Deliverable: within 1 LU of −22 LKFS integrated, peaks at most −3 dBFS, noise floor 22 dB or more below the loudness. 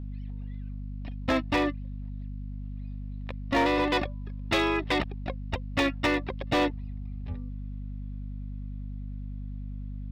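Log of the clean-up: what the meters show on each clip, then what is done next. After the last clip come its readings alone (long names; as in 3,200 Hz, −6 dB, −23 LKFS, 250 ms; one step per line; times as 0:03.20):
share of clipped samples 0.7%; peaks flattened at −19.0 dBFS; mains hum 50 Hz; hum harmonics up to 250 Hz; level of the hum −34 dBFS; integrated loudness −31.0 LKFS; sample peak −19.0 dBFS; target loudness −22.0 LKFS
→ clipped peaks rebuilt −19 dBFS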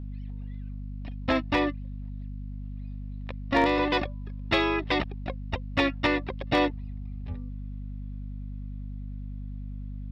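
share of clipped samples 0.0%; mains hum 50 Hz; hum harmonics up to 250 Hz; level of the hum −34 dBFS
→ hum removal 50 Hz, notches 5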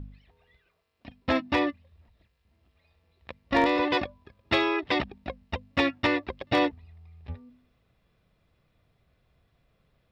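mains hum none found; integrated loudness −27.0 LKFS; sample peak −10.0 dBFS; target loudness −22.0 LKFS
→ level +5 dB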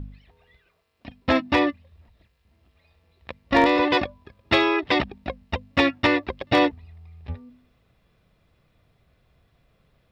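integrated loudness −22.0 LKFS; sample peak −5.0 dBFS; background noise floor −67 dBFS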